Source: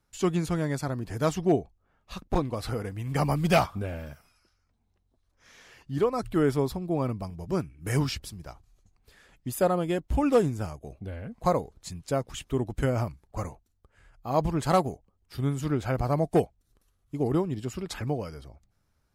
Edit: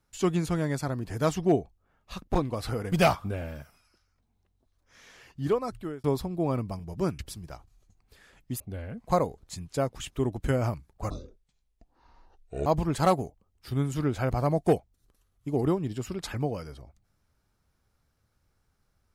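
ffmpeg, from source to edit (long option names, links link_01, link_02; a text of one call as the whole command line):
ffmpeg -i in.wav -filter_complex "[0:a]asplit=7[link_01][link_02][link_03][link_04][link_05][link_06][link_07];[link_01]atrim=end=2.922[link_08];[link_02]atrim=start=3.428:end=6.55,asetpts=PTS-STARTPTS,afade=type=out:start_time=2.542:duration=0.58[link_09];[link_03]atrim=start=6.55:end=7.702,asetpts=PTS-STARTPTS,afade=type=in:duration=0.004:curve=hsin[link_10];[link_04]atrim=start=8.148:end=9.562[link_11];[link_05]atrim=start=10.938:end=13.444[link_12];[link_06]atrim=start=13.44:end=14.33,asetpts=PTS-STARTPTS,asetrate=25137,aresample=44100[link_13];[link_07]atrim=start=14.326[link_14];[link_09][link_10]concat=n=2:v=0:a=1[link_15];[link_08][link_15]acrossfade=duration=0.004:curve1=hsin:curve2=hsin[link_16];[link_16][link_11]acrossfade=duration=0.004:curve1=hsin:curve2=hsin[link_17];[link_17][link_12]acrossfade=duration=0.004:curve1=hsin:curve2=hsin[link_18];[link_18][link_13]acrossfade=duration=0.004:curve1=hsin:curve2=hsin[link_19];[link_19][link_14]acrossfade=duration=0.004:curve1=hsin:curve2=hsin" out.wav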